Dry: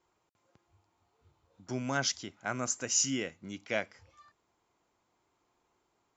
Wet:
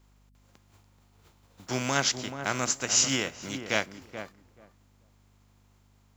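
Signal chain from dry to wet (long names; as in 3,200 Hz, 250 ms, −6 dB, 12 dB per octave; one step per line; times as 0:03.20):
compressing power law on the bin magnitudes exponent 0.57
mains hum 50 Hz, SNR 28 dB
feedback echo with a low-pass in the loop 431 ms, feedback 17%, low-pass 1,000 Hz, level −8 dB
level +5 dB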